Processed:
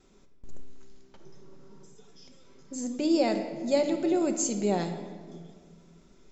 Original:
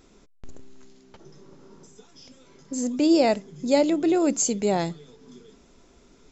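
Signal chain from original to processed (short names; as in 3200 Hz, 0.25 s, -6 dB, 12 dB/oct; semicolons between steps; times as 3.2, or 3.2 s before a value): gate with hold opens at -51 dBFS; shoebox room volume 2100 m³, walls mixed, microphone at 1.1 m; gain -6.5 dB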